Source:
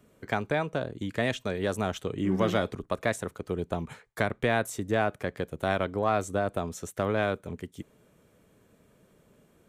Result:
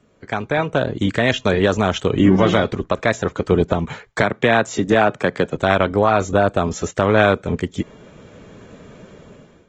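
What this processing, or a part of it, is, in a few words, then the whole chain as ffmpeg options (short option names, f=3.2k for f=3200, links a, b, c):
low-bitrate web radio: -filter_complex "[0:a]asettb=1/sr,asplit=3[a][b][c];[a]atrim=end=4.224[d];[b]atrim=start=4.22:end=5.56,asetpts=PTS-STARTPTS,afade=t=in:d=0.004:c=qsin,afade=t=out:st=1.336:d=0.004:c=qsin,highpass=f=120:w=0.5412,highpass=f=120:w=1.3066[e];[c]atrim=start=5.556[f];[d][e]acrossfade=d=0.004:c1=hsin:c2=qsin[g];[g][f]acrossfade=d=0.004:c1=qsin:c2=hsin,dynaudnorm=f=290:g=5:m=16.5dB,alimiter=limit=-7.5dB:level=0:latency=1:release=356,volume=3dB" -ar 48000 -c:a aac -b:a 24k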